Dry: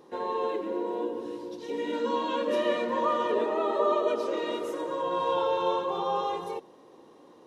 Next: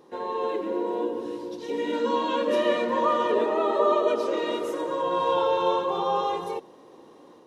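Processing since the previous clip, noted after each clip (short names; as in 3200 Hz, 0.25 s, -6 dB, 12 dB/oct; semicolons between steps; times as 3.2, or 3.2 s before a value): AGC gain up to 3.5 dB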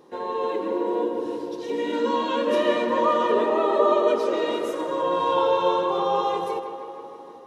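tape echo 0.157 s, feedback 77%, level -9.5 dB, low-pass 3700 Hz; gain +1.5 dB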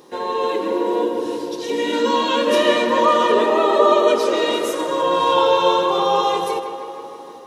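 high shelf 2600 Hz +10.5 dB; gain +4.5 dB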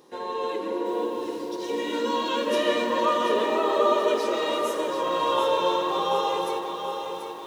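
lo-fi delay 0.735 s, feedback 55%, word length 7-bit, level -7.5 dB; gain -8 dB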